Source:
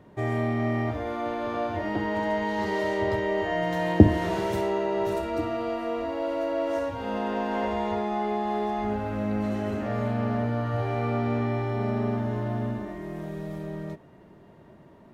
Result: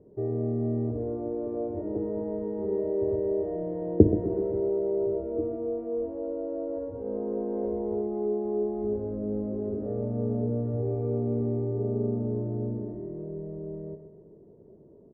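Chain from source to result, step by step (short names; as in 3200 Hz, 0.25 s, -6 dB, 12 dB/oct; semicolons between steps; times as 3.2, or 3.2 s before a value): synth low-pass 440 Hz, resonance Q 4.9; low shelf 120 Hz +5.5 dB; on a send: feedback echo 0.128 s, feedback 49%, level -10 dB; on the sum: gain -8.5 dB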